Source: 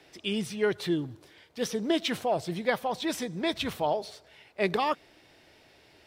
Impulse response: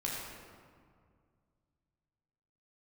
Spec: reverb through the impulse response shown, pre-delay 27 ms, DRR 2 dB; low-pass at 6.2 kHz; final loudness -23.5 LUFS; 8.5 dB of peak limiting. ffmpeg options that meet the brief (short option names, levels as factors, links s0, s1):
-filter_complex "[0:a]lowpass=6200,alimiter=limit=0.0891:level=0:latency=1,asplit=2[s0][s1];[1:a]atrim=start_sample=2205,adelay=27[s2];[s1][s2]afir=irnorm=-1:irlink=0,volume=0.501[s3];[s0][s3]amix=inputs=2:normalize=0,volume=2.37"